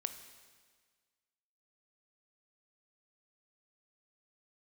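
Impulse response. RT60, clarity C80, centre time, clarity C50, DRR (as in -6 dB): 1.6 s, 11.5 dB, 16 ms, 10.0 dB, 8.5 dB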